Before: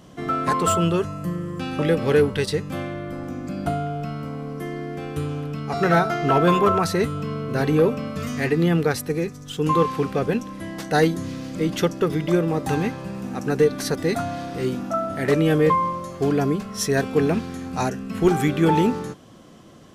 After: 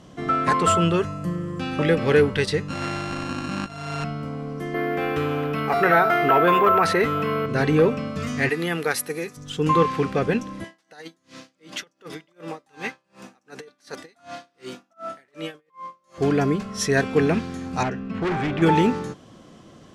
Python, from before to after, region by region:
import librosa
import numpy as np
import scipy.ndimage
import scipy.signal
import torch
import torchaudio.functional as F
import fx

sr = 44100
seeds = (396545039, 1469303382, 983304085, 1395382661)

y = fx.chain(x, sr, fx.sample_sort(block=32),
    fx.lowpass(hz=7600.0, slope=12),
    fx.over_compress(threshold_db=-29.0, ratio=-0.5), at=(2.68, 4.04))
y = fx.chain(y, sr, fx.bass_treble(bass_db=-12, treble_db=-11),
    fx.resample_bad(factor=3, down='none', up='hold'),
    fx.env_flatten(amount_pct=50), at=(4.74, 7.46))
y = fx.chain(y, sr, fx.highpass(hz=580.0, slope=6),
    fx.peak_eq(hz=11000.0, db=14.0, octaves=0.48), at=(8.49, 9.37))
y = fx.chain(y, sr, fx.highpass(hz=1100.0, slope=6),
    fx.over_compress(threshold_db=-29.0, ratio=-0.5),
    fx.tremolo_db(hz=2.7, depth_db=34), at=(10.64, 16.18))
y = fx.chain(y, sr, fx.lowpass(hz=3000.0, slope=12),
    fx.overload_stage(gain_db=22.0), at=(17.83, 18.62))
y = scipy.signal.sosfilt(scipy.signal.butter(2, 8900.0, 'lowpass', fs=sr, output='sos'), y)
y = fx.dynamic_eq(y, sr, hz=2000.0, q=1.2, threshold_db=-38.0, ratio=4.0, max_db=5)